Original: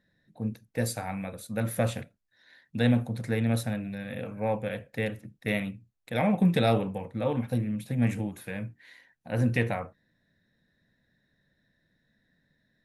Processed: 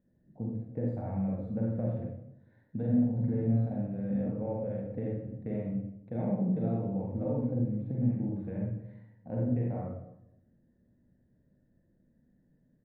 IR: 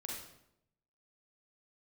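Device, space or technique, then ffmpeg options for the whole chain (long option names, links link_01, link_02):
television next door: -filter_complex "[0:a]acompressor=threshold=-32dB:ratio=6,lowpass=520[link_01];[1:a]atrim=start_sample=2205[link_02];[link_01][link_02]afir=irnorm=-1:irlink=0,asplit=3[link_03][link_04][link_05];[link_03]afade=type=out:start_time=2.92:duration=0.02[link_06];[link_04]asplit=2[link_07][link_08];[link_08]adelay=45,volume=-4dB[link_09];[link_07][link_09]amix=inputs=2:normalize=0,afade=type=in:start_time=2.92:duration=0.02,afade=type=out:start_time=4.29:duration=0.02[link_10];[link_05]afade=type=in:start_time=4.29:duration=0.02[link_11];[link_06][link_10][link_11]amix=inputs=3:normalize=0,volume=6dB"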